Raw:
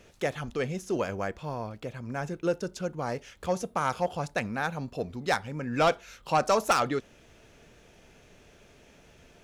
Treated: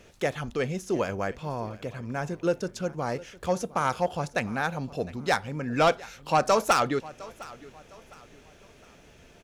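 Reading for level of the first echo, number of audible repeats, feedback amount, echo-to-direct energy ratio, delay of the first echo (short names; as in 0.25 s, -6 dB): -20.0 dB, 2, 35%, -19.5 dB, 0.708 s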